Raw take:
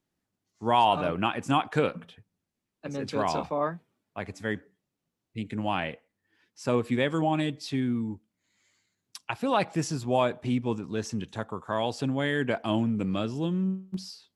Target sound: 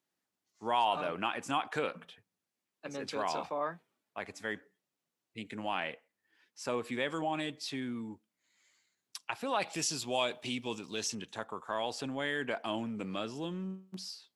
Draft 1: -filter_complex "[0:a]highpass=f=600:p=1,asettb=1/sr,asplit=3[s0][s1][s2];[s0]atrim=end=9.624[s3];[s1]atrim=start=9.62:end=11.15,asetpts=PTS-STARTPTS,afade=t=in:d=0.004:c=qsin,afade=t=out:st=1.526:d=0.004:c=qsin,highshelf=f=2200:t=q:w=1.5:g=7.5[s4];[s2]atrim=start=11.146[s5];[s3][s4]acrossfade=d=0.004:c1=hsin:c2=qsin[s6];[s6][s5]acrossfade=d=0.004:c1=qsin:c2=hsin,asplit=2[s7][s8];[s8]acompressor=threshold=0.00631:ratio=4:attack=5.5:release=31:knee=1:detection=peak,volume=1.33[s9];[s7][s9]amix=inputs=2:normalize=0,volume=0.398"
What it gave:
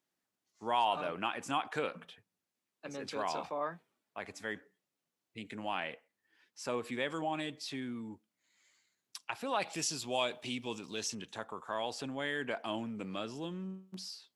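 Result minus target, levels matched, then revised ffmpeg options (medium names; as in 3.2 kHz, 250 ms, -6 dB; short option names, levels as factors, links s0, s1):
compression: peak gain reduction +5.5 dB
-filter_complex "[0:a]highpass=f=600:p=1,asettb=1/sr,asplit=3[s0][s1][s2];[s0]atrim=end=9.624[s3];[s1]atrim=start=9.62:end=11.15,asetpts=PTS-STARTPTS,afade=t=in:d=0.004:c=qsin,afade=t=out:st=1.526:d=0.004:c=qsin,highshelf=f=2200:t=q:w=1.5:g=7.5[s4];[s2]atrim=start=11.146[s5];[s3][s4]acrossfade=d=0.004:c1=hsin:c2=qsin[s6];[s6][s5]acrossfade=d=0.004:c1=qsin:c2=hsin,asplit=2[s7][s8];[s8]acompressor=threshold=0.015:ratio=4:attack=5.5:release=31:knee=1:detection=peak,volume=1.33[s9];[s7][s9]amix=inputs=2:normalize=0,volume=0.398"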